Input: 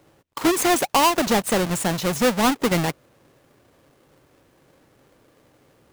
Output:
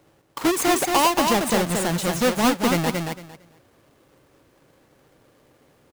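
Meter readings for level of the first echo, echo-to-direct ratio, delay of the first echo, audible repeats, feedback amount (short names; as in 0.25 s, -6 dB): -4.5 dB, -4.5 dB, 0.227 s, 3, 19%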